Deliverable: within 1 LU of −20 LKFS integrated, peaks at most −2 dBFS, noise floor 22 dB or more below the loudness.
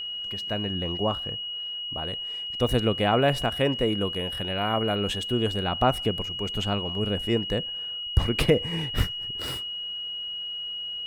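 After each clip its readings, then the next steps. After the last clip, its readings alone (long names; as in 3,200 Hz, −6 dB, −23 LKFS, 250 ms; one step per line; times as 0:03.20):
interfering tone 2,900 Hz; level of the tone −31 dBFS; integrated loudness −27.0 LKFS; sample peak −7.5 dBFS; target loudness −20.0 LKFS
→ notch filter 2,900 Hz, Q 30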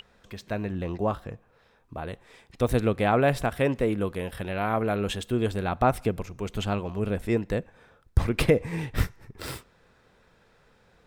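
interfering tone none found; integrated loudness −27.5 LKFS; sample peak −8.0 dBFS; target loudness −20.0 LKFS
→ level +7.5 dB
brickwall limiter −2 dBFS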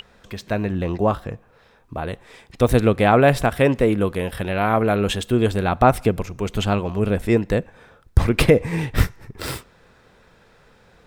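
integrated loudness −20.5 LKFS; sample peak −2.0 dBFS; background noise floor −55 dBFS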